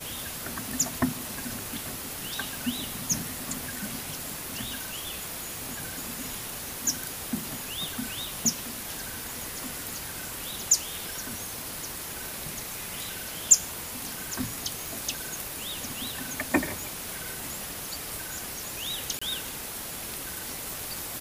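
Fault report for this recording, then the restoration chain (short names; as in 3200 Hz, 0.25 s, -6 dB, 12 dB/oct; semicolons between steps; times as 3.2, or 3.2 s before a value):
14.86 pop
19.19–19.21 gap 25 ms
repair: de-click; interpolate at 19.19, 25 ms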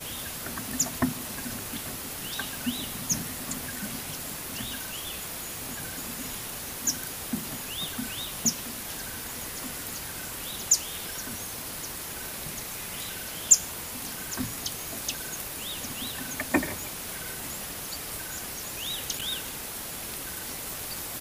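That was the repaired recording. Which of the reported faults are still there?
none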